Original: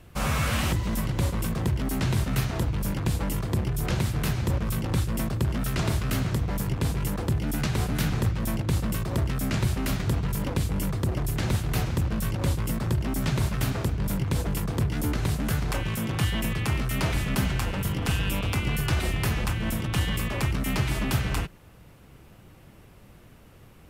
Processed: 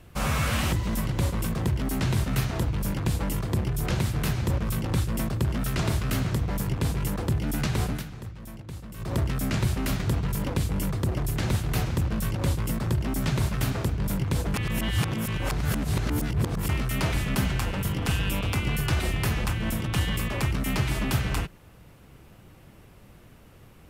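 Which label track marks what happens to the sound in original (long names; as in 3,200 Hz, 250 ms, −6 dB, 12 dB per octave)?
7.890000	9.110000	duck −13.5 dB, fades 0.15 s
14.540000	16.690000	reverse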